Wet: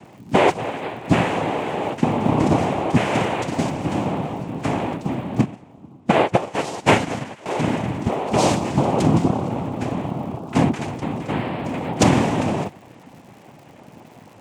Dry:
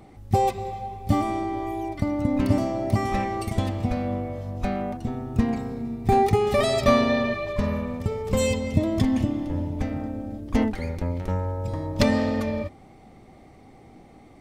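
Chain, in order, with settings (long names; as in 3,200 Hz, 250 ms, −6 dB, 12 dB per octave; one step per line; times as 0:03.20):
cochlear-implant simulation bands 4
surface crackle 160 per second −47 dBFS
0:05.41–0:07.46: expander for the loud parts 2.5 to 1, over −28 dBFS
level +5.5 dB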